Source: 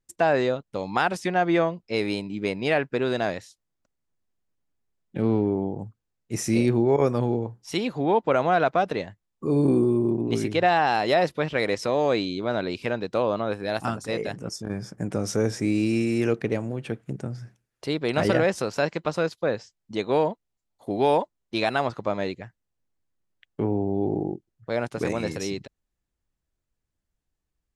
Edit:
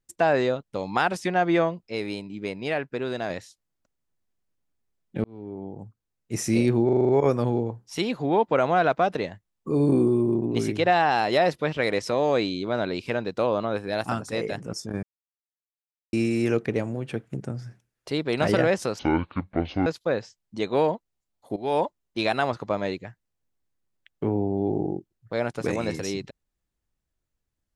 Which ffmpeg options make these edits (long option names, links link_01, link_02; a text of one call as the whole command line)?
ffmpeg -i in.wav -filter_complex "[0:a]asplit=15[link_01][link_02][link_03][link_04][link_05][link_06][link_07][link_08][link_09][link_10][link_11][link_12][link_13][link_14][link_15];[link_01]atrim=end=1.902[link_16];[link_02]atrim=start=1.898:end=3.302,asetpts=PTS-STARTPTS,volume=-4.5dB[link_17];[link_03]atrim=start=3.298:end=5.24,asetpts=PTS-STARTPTS,afade=type=out:start_time=1.938:duration=0.004:curve=hsin[link_18];[link_04]atrim=start=5.24:end=6.892,asetpts=PTS-STARTPTS,afade=type=in:duration=1.1[link_19];[link_05]atrim=start=6.848:end=6.892[link_20];[link_06]atrim=start=6.848:end=6.892[link_21];[link_07]atrim=start=6.848:end=6.892[link_22];[link_08]atrim=start=6.848:end=6.892[link_23];[link_09]atrim=start=6.848:end=6.892[link_24];[link_10]atrim=start=6.848:end=14.79,asetpts=PTS-STARTPTS,afade=type=out:start_time=7.938:duration=0.004:curve=hsin[link_25];[link_11]atrim=start=14.79:end=15.89,asetpts=PTS-STARTPTS,volume=0[link_26];[link_12]atrim=start=15.89:end=18.754,asetpts=PTS-STARTPTS,afade=type=in:duration=0.004:curve=hsin[link_27];[link_13]atrim=start=18.75:end=19.23,asetpts=PTS-STARTPTS,asetrate=24255,aresample=44100,atrim=end_sample=38487,asetpts=PTS-STARTPTS[link_28];[link_14]atrim=start=19.226:end=20.93,asetpts=PTS-STARTPTS,afade=type=out:start_time=1.7:duration=0.004:curve=hsin:silence=0.141254[link_29];[link_15]atrim=start=20.93,asetpts=PTS-STARTPTS,afade=type=in:duration=0.29:silence=0.141254[link_30];[link_16][link_17]acrossfade=duration=0.004:curve1=hsin:curve2=hsin[link_31];[link_18][link_19]concat=n=2:v=0:a=1[link_32];[link_31][link_32]acrossfade=duration=0.004:curve1=hsin:curve2=hsin[link_33];[link_33][link_20]acrossfade=duration=0.004:curve1=hsin:curve2=hsin[link_34];[link_34][link_21]acrossfade=duration=0.004:curve1=hsin:curve2=hsin[link_35];[link_35][link_22]acrossfade=duration=0.004:curve1=hsin:curve2=hsin[link_36];[link_36][link_23]acrossfade=duration=0.004:curve1=hsin:curve2=hsin[link_37];[link_37][link_24]acrossfade=duration=0.004:curve1=hsin:curve2=hsin[link_38];[link_25][link_26][link_27]concat=n=3:v=0:a=1[link_39];[link_38][link_39]acrossfade=duration=0.004:curve1=hsin:curve2=hsin[link_40];[link_40][link_28]acrossfade=duration=0.004:curve1=hsin:curve2=hsin[link_41];[link_29][link_30]concat=n=2:v=0:a=1[link_42];[link_41][link_42]acrossfade=duration=0.004:curve1=hsin:curve2=hsin" out.wav